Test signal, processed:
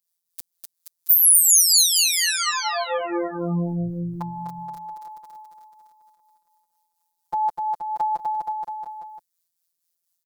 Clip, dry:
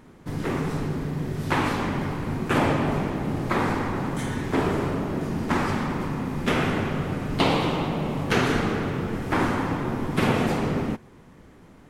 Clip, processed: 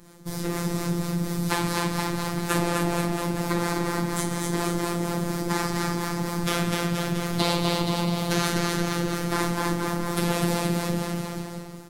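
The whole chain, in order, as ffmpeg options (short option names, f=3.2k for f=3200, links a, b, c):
-filter_complex "[0:a]aexciter=amount=3.8:drive=4.6:freq=3.9k,acrossover=split=460[a][b];[a]aeval=exprs='val(0)*(1-0.5/2+0.5/2*cos(2*PI*4.2*n/s))':c=same[c];[b]aeval=exprs='val(0)*(1-0.5/2-0.5/2*cos(2*PI*4.2*n/s))':c=same[d];[c][d]amix=inputs=2:normalize=0,aecho=1:1:250|475|677.5|859.8|1024:0.631|0.398|0.251|0.158|0.1,asplit=2[e][f];[f]acompressor=threshold=-28dB:ratio=6,volume=0dB[g];[e][g]amix=inputs=2:normalize=0,afftfilt=real='hypot(re,im)*cos(PI*b)':imag='0':win_size=1024:overlap=0.75,volume=-1dB"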